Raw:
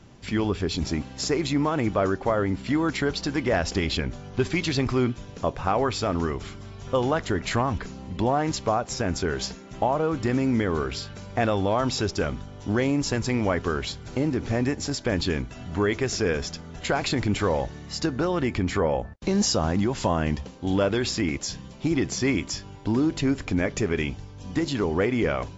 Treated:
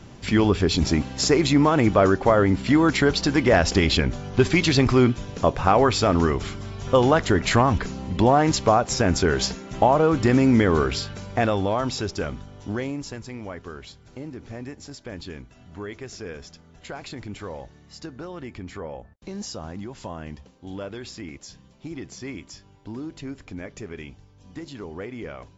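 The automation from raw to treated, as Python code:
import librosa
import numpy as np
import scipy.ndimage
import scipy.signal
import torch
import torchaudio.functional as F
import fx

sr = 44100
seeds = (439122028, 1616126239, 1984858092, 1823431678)

y = fx.gain(x, sr, db=fx.line((10.82, 6.0), (12.0, -2.0), (12.6, -2.0), (13.26, -11.5)))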